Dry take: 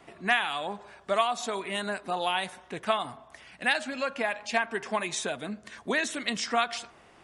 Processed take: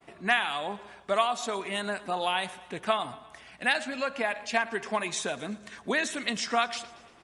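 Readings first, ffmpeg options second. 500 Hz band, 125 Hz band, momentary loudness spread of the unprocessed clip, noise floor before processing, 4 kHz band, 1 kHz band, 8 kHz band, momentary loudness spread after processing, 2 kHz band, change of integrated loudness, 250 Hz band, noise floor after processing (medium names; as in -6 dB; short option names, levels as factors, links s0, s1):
0.0 dB, 0.0 dB, 12 LU, -56 dBFS, 0.0 dB, 0.0 dB, 0.0 dB, 12 LU, 0.0 dB, 0.0 dB, 0.0 dB, -55 dBFS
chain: -af "aecho=1:1:116|232|348|464|580:0.1|0.06|0.036|0.0216|0.013,agate=range=0.0224:threshold=0.00251:ratio=3:detection=peak"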